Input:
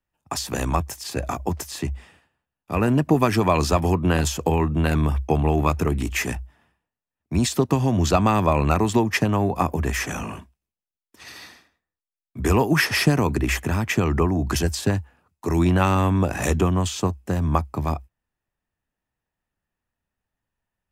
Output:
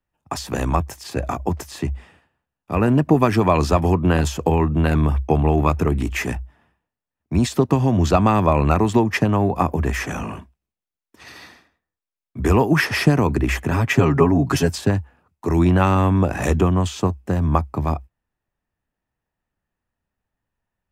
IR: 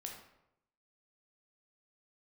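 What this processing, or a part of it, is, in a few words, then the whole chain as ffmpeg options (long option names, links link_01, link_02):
behind a face mask: -filter_complex "[0:a]asettb=1/sr,asplit=3[link_01][link_02][link_03];[link_01]atrim=end=13.714[link_04];[link_02]atrim=start=13.71:end=14.78,asetpts=PTS-STARTPTS,afade=type=in:duration=0.004:curve=qsin,afade=type=out:start_time=1.066:duration=0.004:curve=qsin,aecho=1:1:7.3:0.98,atrim=end_sample=47187[link_05];[link_03]atrim=start=14.776[link_06];[link_04][link_05]acrossfade=duration=0.004:curve1=hsin:curve2=qsin[link_07];[link_07][link_06]acrossfade=duration=0.004:curve1=qsin:curve2=hsin,highshelf=frequency=3100:gain=-8,volume=3dB"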